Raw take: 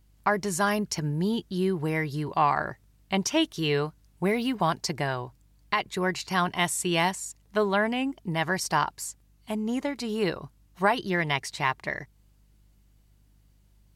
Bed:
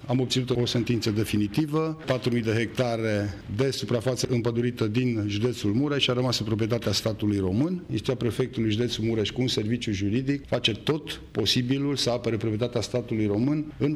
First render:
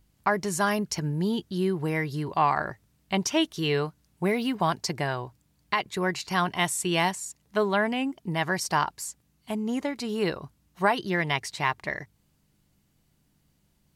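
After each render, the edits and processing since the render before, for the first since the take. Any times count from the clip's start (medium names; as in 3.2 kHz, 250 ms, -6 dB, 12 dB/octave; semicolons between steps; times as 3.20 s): de-hum 50 Hz, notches 2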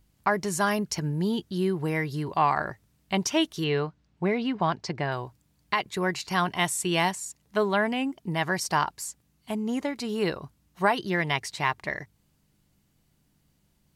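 3.64–5.12 s: distance through air 140 m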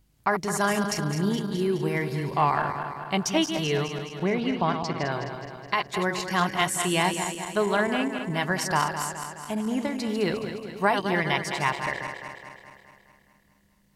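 backward echo that repeats 105 ms, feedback 76%, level -7.5 dB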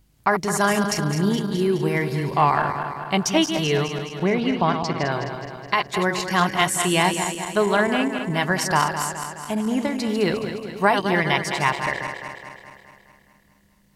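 trim +4.5 dB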